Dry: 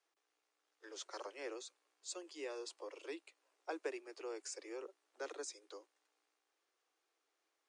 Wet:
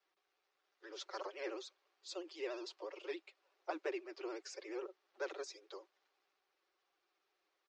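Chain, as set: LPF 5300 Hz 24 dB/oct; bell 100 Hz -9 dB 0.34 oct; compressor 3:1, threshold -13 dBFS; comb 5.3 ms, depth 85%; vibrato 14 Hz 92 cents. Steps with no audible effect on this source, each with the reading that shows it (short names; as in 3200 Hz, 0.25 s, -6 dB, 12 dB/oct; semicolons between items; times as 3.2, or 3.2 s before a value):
bell 100 Hz: input band starts at 250 Hz; compressor, threshold -13 dBFS: input peak -27.5 dBFS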